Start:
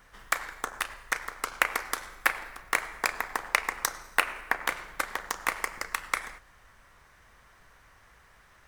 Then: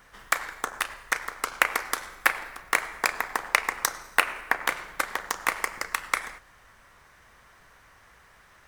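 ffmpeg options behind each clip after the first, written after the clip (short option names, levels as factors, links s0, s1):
-af "lowshelf=f=75:g=-6.5,volume=1.41"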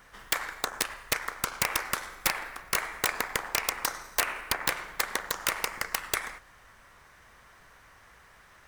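-af "aeval=exprs='(mod(5.01*val(0)+1,2)-1)/5.01':c=same"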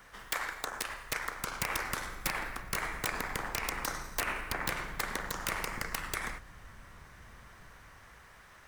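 -filter_complex "[0:a]acrossover=split=270[s0][s1];[s0]dynaudnorm=f=360:g=9:m=3.55[s2];[s2][s1]amix=inputs=2:normalize=0,alimiter=limit=0.106:level=0:latency=1:release=51"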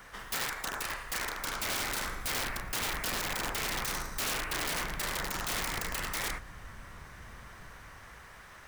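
-af "aeval=exprs='(mod(37.6*val(0)+1,2)-1)/37.6':c=same,volume=1.68"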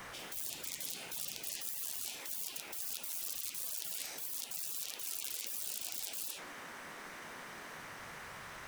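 -af "flanger=delay=5.4:depth=10:regen=81:speed=1.8:shape=sinusoidal,afftfilt=real='re*lt(hypot(re,im),0.00631)':imag='im*lt(hypot(re,im),0.00631)':win_size=1024:overlap=0.75,volume=2.82"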